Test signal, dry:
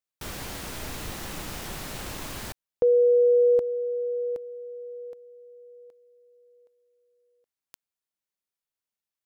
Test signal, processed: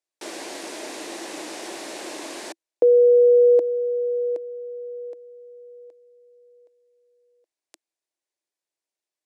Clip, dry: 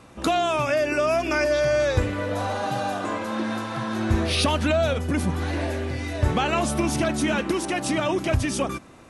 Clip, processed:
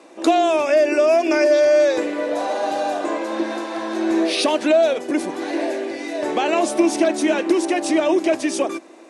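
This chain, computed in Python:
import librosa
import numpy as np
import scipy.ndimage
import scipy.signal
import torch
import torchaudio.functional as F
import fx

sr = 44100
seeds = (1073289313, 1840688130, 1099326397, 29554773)

y = fx.cabinet(x, sr, low_hz=300.0, low_slope=24, high_hz=9800.0, hz=(330.0, 630.0, 1300.0, 3100.0), db=(9, 5, -7, -3))
y = y * librosa.db_to_amplitude(3.0)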